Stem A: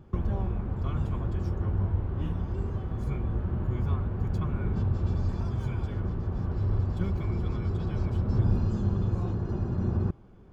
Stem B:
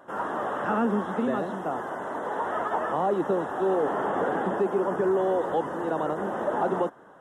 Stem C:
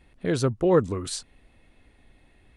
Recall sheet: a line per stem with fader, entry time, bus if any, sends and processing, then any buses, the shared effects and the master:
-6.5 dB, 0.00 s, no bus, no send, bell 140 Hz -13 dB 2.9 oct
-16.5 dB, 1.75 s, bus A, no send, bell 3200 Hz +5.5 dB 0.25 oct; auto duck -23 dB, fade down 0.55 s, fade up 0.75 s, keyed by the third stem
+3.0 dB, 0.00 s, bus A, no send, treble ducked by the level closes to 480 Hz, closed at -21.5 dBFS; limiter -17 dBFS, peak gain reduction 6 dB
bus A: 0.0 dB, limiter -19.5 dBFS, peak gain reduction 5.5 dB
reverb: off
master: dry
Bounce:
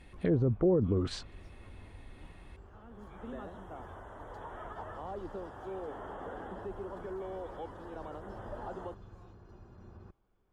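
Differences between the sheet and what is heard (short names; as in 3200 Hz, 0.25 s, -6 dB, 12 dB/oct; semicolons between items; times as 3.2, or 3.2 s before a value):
stem A -6.5 dB -> -15.0 dB; stem B: entry 1.75 s -> 2.05 s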